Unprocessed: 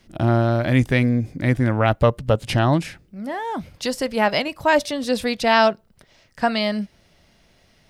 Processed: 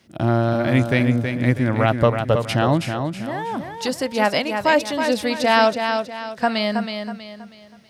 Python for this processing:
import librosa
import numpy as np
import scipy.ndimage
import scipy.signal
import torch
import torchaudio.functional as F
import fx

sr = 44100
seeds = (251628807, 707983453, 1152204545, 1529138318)

p1 = scipy.signal.sosfilt(scipy.signal.butter(2, 95.0, 'highpass', fs=sr, output='sos'), x)
y = p1 + fx.echo_feedback(p1, sr, ms=322, feedback_pct=36, wet_db=-6.5, dry=0)